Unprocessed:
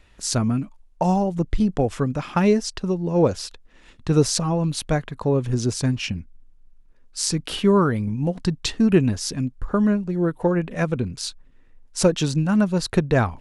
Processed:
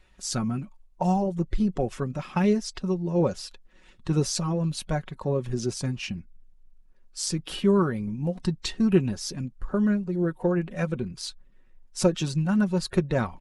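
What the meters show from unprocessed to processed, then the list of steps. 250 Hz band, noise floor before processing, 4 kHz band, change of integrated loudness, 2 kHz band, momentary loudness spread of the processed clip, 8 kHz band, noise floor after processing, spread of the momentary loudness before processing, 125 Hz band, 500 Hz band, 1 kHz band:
-4.5 dB, -52 dBFS, -5.5 dB, -5.0 dB, -6.0 dB, 10 LU, -6.0 dB, -56 dBFS, 8 LU, -5.0 dB, -5.0 dB, -5.5 dB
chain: bin magnitudes rounded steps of 15 dB; comb 5.4 ms, depth 43%; gain -6 dB

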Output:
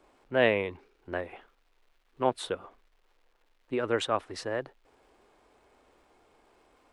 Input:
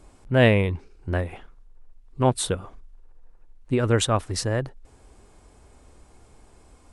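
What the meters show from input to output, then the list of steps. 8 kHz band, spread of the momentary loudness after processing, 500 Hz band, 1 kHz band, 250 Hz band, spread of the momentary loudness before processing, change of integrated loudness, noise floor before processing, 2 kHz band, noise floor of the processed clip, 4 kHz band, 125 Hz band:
-16.0 dB, 13 LU, -5.0 dB, -4.0 dB, -10.0 dB, 13 LU, -7.0 dB, -54 dBFS, -4.5 dB, -69 dBFS, -7.0 dB, -20.0 dB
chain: crackle 500/s -52 dBFS; three-band isolator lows -18 dB, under 280 Hz, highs -14 dB, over 4000 Hz; gain -4 dB

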